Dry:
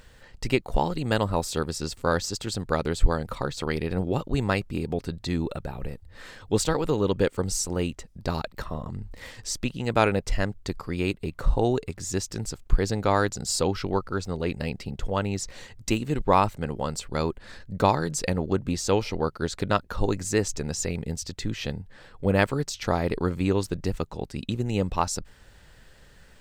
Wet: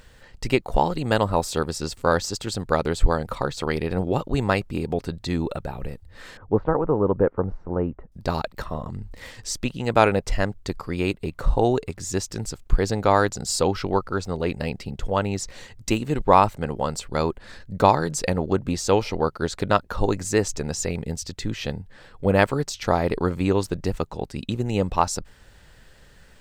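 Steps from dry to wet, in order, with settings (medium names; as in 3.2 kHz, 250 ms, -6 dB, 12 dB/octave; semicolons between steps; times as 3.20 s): 6.37–8.12 s: low-pass 1.4 kHz 24 dB/octave; dynamic bell 780 Hz, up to +4 dB, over -38 dBFS, Q 0.78; trim +1.5 dB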